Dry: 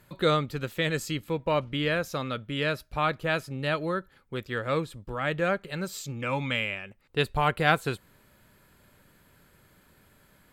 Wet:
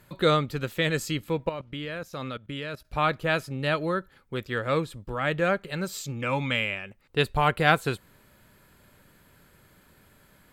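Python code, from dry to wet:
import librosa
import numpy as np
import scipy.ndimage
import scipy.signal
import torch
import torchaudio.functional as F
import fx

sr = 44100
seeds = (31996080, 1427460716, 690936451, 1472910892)

y = fx.level_steps(x, sr, step_db=18, at=(1.49, 2.85))
y = y * librosa.db_to_amplitude(2.0)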